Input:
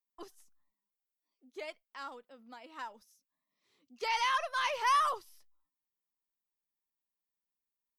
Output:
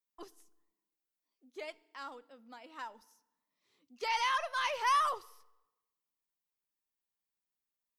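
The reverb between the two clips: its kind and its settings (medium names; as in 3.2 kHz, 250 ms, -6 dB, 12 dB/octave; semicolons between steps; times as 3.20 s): FDN reverb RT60 1 s, low-frequency decay 1.25×, high-frequency decay 0.85×, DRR 19.5 dB; trim -1 dB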